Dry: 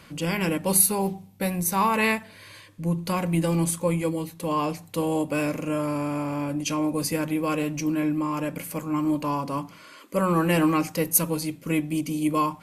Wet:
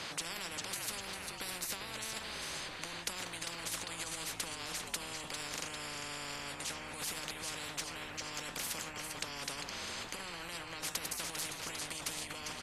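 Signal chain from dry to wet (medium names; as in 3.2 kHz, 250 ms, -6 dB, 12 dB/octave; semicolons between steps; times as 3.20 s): high-pass 180 Hz; compressor with a negative ratio -31 dBFS, ratio -1; hard clipper -18.5 dBFS, distortion -37 dB; distance through air 90 m; on a send: frequency-shifting echo 399 ms, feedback 41%, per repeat -59 Hz, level -13 dB; on the sum: spectrum-flattening compressor 10:1; trim -2.5 dB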